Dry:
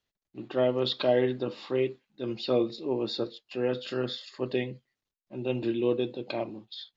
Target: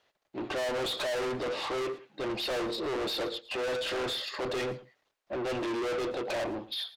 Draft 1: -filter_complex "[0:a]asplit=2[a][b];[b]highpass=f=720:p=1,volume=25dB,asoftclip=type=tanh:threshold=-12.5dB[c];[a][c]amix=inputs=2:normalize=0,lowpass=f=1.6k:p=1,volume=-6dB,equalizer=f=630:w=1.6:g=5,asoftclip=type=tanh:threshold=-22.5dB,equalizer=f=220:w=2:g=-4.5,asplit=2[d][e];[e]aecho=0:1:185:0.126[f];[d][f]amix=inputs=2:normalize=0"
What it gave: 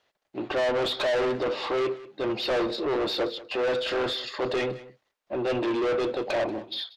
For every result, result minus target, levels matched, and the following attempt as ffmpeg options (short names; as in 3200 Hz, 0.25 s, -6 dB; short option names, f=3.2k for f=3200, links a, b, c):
echo 73 ms late; soft clip: distortion -4 dB
-filter_complex "[0:a]asplit=2[a][b];[b]highpass=f=720:p=1,volume=25dB,asoftclip=type=tanh:threshold=-12.5dB[c];[a][c]amix=inputs=2:normalize=0,lowpass=f=1.6k:p=1,volume=-6dB,equalizer=f=630:w=1.6:g=5,asoftclip=type=tanh:threshold=-22.5dB,equalizer=f=220:w=2:g=-4.5,asplit=2[d][e];[e]aecho=0:1:112:0.126[f];[d][f]amix=inputs=2:normalize=0"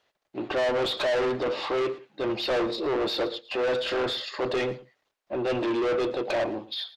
soft clip: distortion -4 dB
-filter_complex "[0:a]asplit=2[a][b];[b]highpass=f=720:p=1,volume=25dB,asoftclip=type=tanh:threshold=-12.5dB[c];[a][c]amix=inputs=2:normalize=0,lowpass=f=1.6k:p=1,volume=-6dB,equalizer=f=630:w=1.6:g=5,asoftclip=type=tanh:threshold=-30dB,equalizer=f=220:w=2:g=-4.5,asplit=2[d][e];[e]aecho=0:1:112:0.126[f];[d][f]amix=inputs=2:normalize=0"